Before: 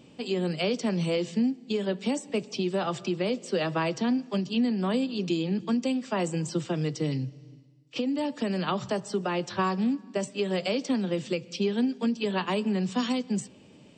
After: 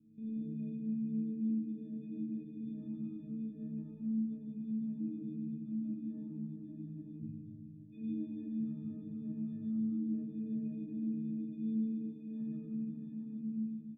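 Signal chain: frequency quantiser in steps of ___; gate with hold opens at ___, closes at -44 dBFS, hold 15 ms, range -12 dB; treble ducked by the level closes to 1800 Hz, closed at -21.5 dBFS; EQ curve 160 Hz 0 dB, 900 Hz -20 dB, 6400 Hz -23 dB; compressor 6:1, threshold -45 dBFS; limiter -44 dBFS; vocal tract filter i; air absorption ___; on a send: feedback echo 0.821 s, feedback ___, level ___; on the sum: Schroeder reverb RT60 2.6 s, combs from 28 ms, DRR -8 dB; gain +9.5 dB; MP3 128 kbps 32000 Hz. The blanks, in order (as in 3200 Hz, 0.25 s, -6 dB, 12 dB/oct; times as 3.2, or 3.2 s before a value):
6 st, -37 dBFS, 490 m, 36%, -12 dB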